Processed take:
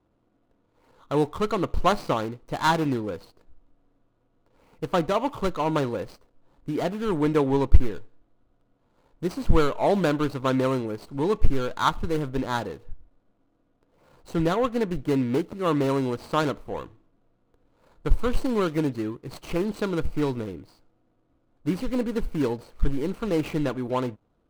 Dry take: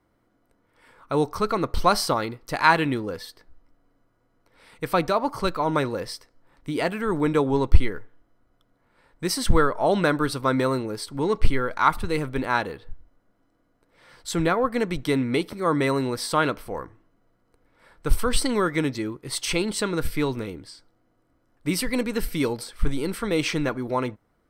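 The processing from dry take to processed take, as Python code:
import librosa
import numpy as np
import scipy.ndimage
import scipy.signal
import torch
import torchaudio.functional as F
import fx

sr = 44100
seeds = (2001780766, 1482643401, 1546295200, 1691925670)

y = scipy.signal.medfilt(x, 25)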